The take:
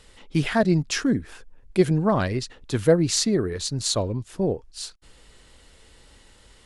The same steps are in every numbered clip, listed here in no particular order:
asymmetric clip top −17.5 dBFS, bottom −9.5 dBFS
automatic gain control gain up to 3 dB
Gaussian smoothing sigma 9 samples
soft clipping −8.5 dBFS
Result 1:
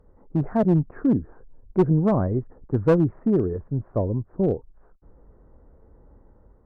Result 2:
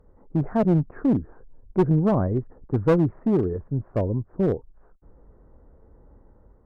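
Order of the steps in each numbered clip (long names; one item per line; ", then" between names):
Gaussian smoothing, then asymmetric clip, then soft clipping, then automatic gain control
Gaussian smoothing, then soft clipping, then automatic gain control, then asymmetric clip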